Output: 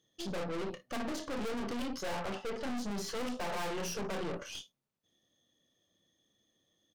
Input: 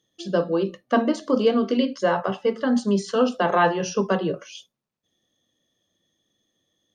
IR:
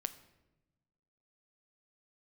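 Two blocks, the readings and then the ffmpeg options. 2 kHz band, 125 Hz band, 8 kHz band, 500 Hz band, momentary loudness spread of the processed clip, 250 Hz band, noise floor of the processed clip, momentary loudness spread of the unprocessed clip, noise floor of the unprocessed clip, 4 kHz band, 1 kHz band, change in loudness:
-13.0 dB, -13.5 dB, -5.5 dB, -16.5 dB, 4 LU, -15.5 dB, -79 dBFS, 5 LU, -81 dBFS, -8.5 dB, -15.5 dB, -15.5 dB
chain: -af "aecho=1:1:29|57:0.335|0.158,aeval=exprs='(tanh(63.1*val(0)+0.65)-tanh(0.65))/63.1':c=same"

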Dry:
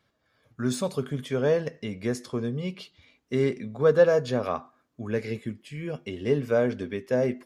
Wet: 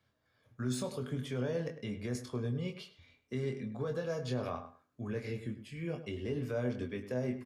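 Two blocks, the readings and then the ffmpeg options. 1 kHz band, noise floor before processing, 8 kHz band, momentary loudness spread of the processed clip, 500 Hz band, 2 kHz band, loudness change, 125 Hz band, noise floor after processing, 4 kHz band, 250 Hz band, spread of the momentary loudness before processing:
-11.0 dB, -73 dBFS, no reading, 7 LU, -13.5 dB, -11.0 dB, -10.5 dB, -5.0 dB, -77 dBFS, -7.0 dB, -8.0 dB, 14 LU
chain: -filter_complex "[0:a]equalizer=f=99:w=2.4:g=6.5,acrossover=split=190|3000[s0][s1][s2];[s1]acompressor=threshold=0.0631:ratio=6[s3];[s0][s3][s2]amix=inputs=3:normalize=0,alimiter=limit=0.0891:level=0:latency=1:release=55,asplit=2[s4][s5];[s5]adelay=24,volume=0.501[s6];[s4][s6]amix=inputs=2:normalize=0,asplit=2[s7][s8];[s8]adelay=103,lowpass=f=2500:p=1,volume=0.282,asplit=2[s9][s10];[s10]adelay=103,lowpass=f=2500:p=1,volume=0.18[s11];[s9][s11]amix=inputs=2:normalize=0[s12];[s7][s12]amix=inputs=2:normalize=0,volume=0.447"

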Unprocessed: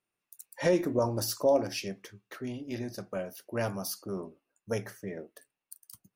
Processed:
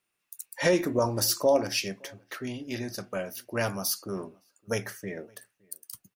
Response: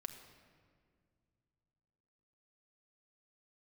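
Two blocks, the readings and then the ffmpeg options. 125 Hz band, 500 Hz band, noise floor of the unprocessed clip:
+1.5 dB, +2.0 dB, under -85 dBFS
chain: -filter_complex "[0:a]asplit=2[s0][s1];[s1]adelay=565.6,volume=0.0398,highshelf=f=4000:g=-12.7[s2];[s0][s2]amix=inputs=2:normalize=0,acrossover=split=1200[s3][s4];[s4]acontrast=55[s5];[s3][s5]amix=inputs=2:normalize=0,volume=1.19"

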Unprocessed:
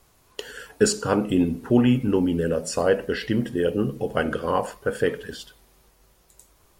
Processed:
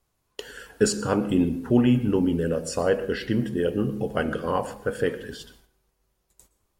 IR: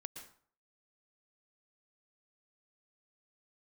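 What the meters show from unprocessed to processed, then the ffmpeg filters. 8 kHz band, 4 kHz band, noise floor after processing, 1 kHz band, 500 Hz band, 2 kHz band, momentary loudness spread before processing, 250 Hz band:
-2.5 dB, -2.5 dB, -74 dBFS, -2.5 dB, -2.0 dB, -2.5 dB, 17 LU, -0.5 dB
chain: -filter_complex "[0:a]agate=range=0.224:threshold=0.002:ratio=16:detection=peak,asplit=2[s0][s1];[1:a]atrim=start_sample=2205,lowshelf=f=340:g=9[s2];[s1][s2]afir=irnorm=-1:irlink=0,volume=0.562[s3];[s0][s3]amix=inputs=2:normalize=0,volume=0.562"

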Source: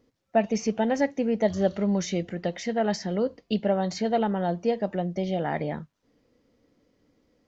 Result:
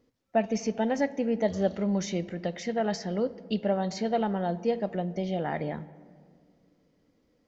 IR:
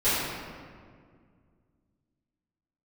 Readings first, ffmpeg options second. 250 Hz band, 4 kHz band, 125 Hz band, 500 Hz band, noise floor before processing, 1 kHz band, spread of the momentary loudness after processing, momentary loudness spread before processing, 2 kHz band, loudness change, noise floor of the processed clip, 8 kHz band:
-2.5 dB, -3.0 dB, -2.5 dB, -2.5 dB, -74 dBFS, -2.5 dB, 5 LU, 5 LU, -2.5 dB, -2.5 dB, -70 dBFS, no reading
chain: -filter_complex "[0:a]asplit=2[s0][s1];[1:a]atrim=start_sample=2205,lowpass=6200[s2];[s1][s2]afir=irnorm=-1:irlink=0,volume=0.0282[s3];[s0][s3]amix=inputs=2:normalize=0,volume=0.708"

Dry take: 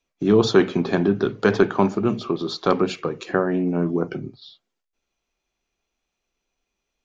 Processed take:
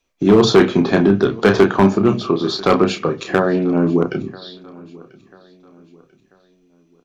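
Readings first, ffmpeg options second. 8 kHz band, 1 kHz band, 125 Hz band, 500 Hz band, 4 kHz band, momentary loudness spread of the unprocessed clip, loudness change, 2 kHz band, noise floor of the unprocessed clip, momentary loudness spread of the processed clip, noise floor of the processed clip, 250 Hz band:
no reading, +6.0 dB, +6.0 dB, +5.5 dB, +7.0 dB, 8 LU, +6.0 dB, +5.5 dB, -81 dBFS, 9 LU, -58 dBFS, +6.0 dB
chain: -filter_complex "[0:a]asplit=2[s0][s1];[s1]adelay=31,volume=0.473[s2];[s0][s2]amix=inputs=2:normalize=0,aecho=1:1:990|1980|2970:0.0708|0.0269|0.0102,volume=3.35,asoftclip=hard,volume=0.299,volume=2"

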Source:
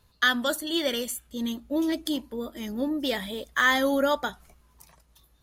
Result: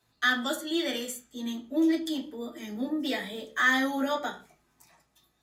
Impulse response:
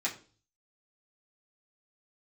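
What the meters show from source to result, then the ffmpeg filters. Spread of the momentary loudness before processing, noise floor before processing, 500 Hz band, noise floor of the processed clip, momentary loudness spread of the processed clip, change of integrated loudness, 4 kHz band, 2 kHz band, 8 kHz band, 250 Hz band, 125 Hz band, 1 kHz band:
11 LU, -63 dBFS, -5.5 dB, -72 dBFS, 13 LU, -2.5 dB, -4.0 dB, -1.5 dB, -4.0 dB, -0.5 dB, no reading, -3.5 dB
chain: -filter_complex "[0:a]asoftclip=type=tanh:threshold=0.335[s0];[1:a]atrim=start_sample=2205,afade=t=out:st=0.25:d=0.01,atrim=end_sample=11466[s1];[s0][s1]afir=irnorm=-1:irlink=0,volume=0.447"

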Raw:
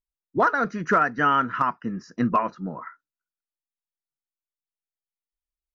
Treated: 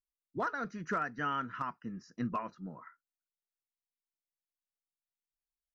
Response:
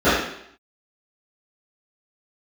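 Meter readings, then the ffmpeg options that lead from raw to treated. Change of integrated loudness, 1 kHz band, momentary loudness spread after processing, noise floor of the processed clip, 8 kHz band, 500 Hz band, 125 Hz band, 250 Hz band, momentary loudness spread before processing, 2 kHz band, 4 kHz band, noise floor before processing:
-14.0 dB, -14.5 dB, 13 LU, under -85 dBFS, no reading, -14.5 dB, -10.5 dB, -12.5 dB, 14 LU, -13.5 dB, -11.0 dB, under -85 dBFS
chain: -af "equalizer=f=720:w=0.31:g=-6.5,volume=0.376"

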